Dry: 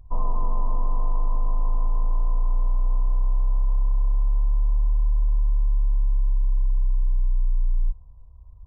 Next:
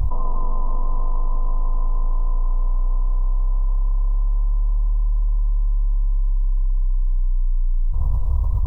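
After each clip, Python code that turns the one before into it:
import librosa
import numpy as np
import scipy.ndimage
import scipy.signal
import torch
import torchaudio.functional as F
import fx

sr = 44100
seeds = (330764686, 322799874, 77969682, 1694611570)

y = fx.env_flatten(x, sr, amount_pct=100)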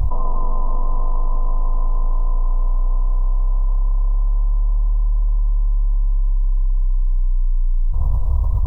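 y = fx.peak_eq(x, sr, hz=670.0, db=3.0, octaves=0.71)
y = y * 10.0 ** (2.0 / 20.0)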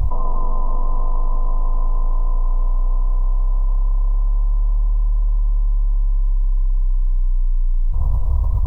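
y = fx.dmg_noise_colour(x, sr, seeds[0], colour='brown', level_db=-49.0)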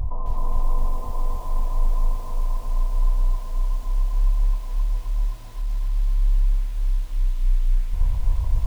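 y = fx.echo_crushed(x, sr, ms=262, feedback_pct=80, bits=7, wet_db=-3.0)
y = y * 10.0 ** (-7.5 / 20.0)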